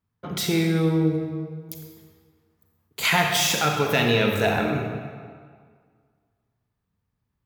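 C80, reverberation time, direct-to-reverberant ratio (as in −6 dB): 4.5 dB, 1.9 s, 2.0 dB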